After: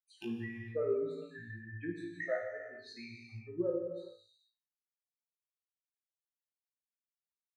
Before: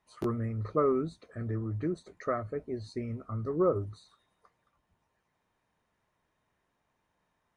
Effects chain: expander on every frequency bin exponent 3; vowel filter e; peaking EQ 550 Hz -6 dB 2.2 oct; compression 10:1, threshold -50 dBFS, peak gain reduction 18 dB; reverb removal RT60 1.4 s; flutter echo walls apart 3 m, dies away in 0.29 s; gated-style reverb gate 480 ms falling, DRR 0.5 dB; tape noise reduction on one side only encoder only; trim +17.5 dB

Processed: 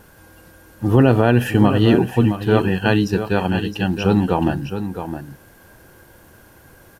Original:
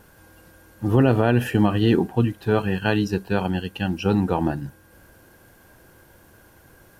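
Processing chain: delay 664 ms -9.5 dB; trim +4 dB

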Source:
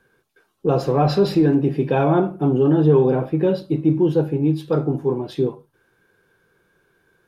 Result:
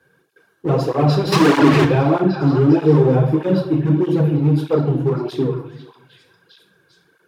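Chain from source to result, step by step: on a send: repeats whose band climbs or falls 403 ms, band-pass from 1.4 kHz, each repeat 0.7 oct, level -4 dB; 1.32–1.85 s: on the sum: overdrive pedal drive 38 dB, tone 3 kHz, clips at -6.5 dBFS; high-pass 77 Hz 24 dB/octave; in parallel at -4 dB: hard clipper -21 dBFS, distortion -6 dB; on the sum: simulated room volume 140 m³, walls mixed, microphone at 0.57 m; cancelling through-zero flanger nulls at 1.6 Hz, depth 5.3 ms

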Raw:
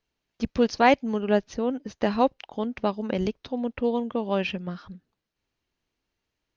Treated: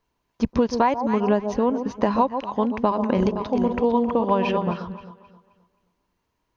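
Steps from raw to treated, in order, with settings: 2.65–4.73 s: backward echo that repeats 258 ms, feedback 40%, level -7 dB; peaking EQ 1 kHz +12.5 dB 0.25 oct; echo whose repeats swap between lows and highs 132 ms, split 1 kHz, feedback 57%, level -11 dB; compression 8:1, threshold -22 dBFS, peak gain reduction 13.5 dB; peaking EQ 3.6 kHz -6.5 dB 2.1 oct; trim +7 dB

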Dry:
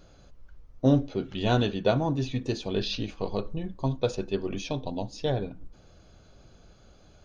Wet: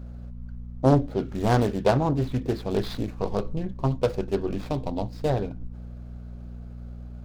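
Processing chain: median filter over 15 samples; mains buzz 60 Hz, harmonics 4, -42 dBFS -6 dB/octave; loudspeaker Doppler distortion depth 0.65 ms; trim +3.5 dB

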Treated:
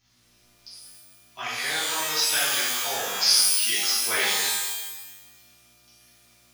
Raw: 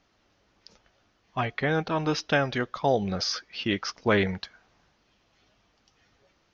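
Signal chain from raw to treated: differentiator; hum 60 Hz, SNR 35 dB; pitch-shifted reverb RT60 1.1 s, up +12 st, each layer -2 dB, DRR -10.5 dB; trim +3 dB

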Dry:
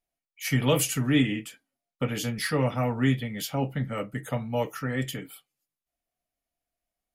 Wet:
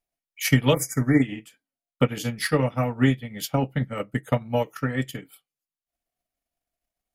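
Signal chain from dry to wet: transient shaper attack +9 dB, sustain -9 dB; spectral selection erased 0.74–1.23 s, 2.3–4.8 kHz

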